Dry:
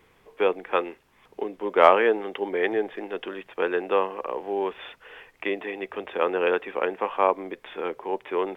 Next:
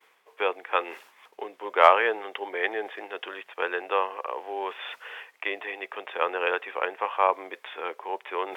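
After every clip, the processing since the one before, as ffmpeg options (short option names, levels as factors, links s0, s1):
-af "highpass=690,agate=range=0.0224:threshold=0.00141:ratio=3:detection=peak,areverse,acompressor=mode=upward:threshold=0.02:ratio=2.5,areverse,volume=1.19"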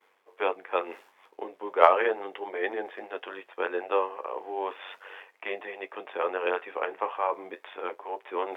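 -af "equalizer=f=440:w=0.34:g=8.5,tremolo=f=95:d=0.621,flanger=delay=8.2:depth=4.8:regen=-54:speed=0.35:shape=sinusoidal,volume=0.841"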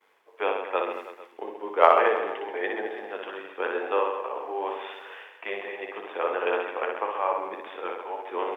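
-af "aecho=1:1:60|132|218.4|322.1|446.5:0.631|0.398|0.251|0.158|0.1"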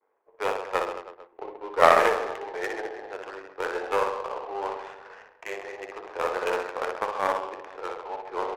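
-af "aeval=exprs='0.891*(cos(1*acos(clip(val(0)/0.891,-1,1)))-cos(1*PI/2))+0.2*(cos(6*acos(clip(val(0)/0.891,-1,1)))-cos(6*PI/2))':c=same,highpass=380,lowpass=2900,adynamicsmooth=sensitivity=7:basefreq=750"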